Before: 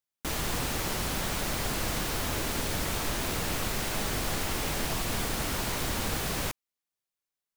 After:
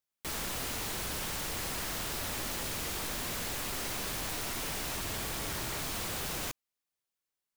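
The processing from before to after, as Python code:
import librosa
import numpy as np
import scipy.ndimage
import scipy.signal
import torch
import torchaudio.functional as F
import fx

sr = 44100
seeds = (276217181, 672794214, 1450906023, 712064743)

y = fx.notch_comb(x, sr, f0_hz=250.0, at=(4.97, 5.82))
y = 10.0 ** (-31.5 / 20.0) * (np.abs((y / 10.0 ** (-31.5 / 20.0) + 3.0) % 4.0 - 2.0) - 1.0)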